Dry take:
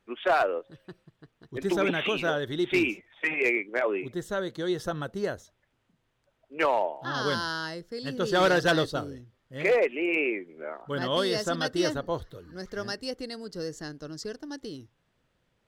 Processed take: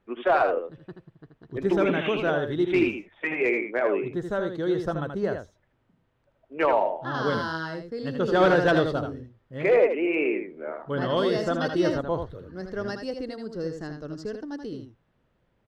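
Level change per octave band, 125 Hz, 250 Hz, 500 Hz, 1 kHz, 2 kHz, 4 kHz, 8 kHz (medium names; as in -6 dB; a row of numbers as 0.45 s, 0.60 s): +4.0 dB, +4.0 dB, +4.0 dB, +2.5 dB, -0.5 dB, -4.5 dB, no reading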